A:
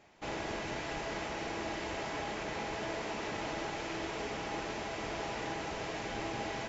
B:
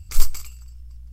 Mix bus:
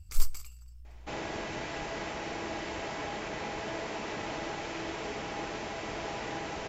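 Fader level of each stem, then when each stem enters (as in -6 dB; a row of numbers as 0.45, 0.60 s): +1.0, -9.5 dB; 0.85, 0.00 s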